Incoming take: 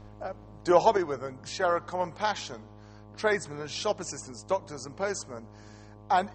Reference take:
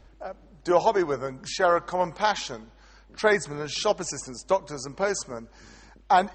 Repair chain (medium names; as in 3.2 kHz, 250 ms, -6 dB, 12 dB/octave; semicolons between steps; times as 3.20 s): de-hum 104.5 Hz, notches 11; gain correction +5 dB, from 0.97 s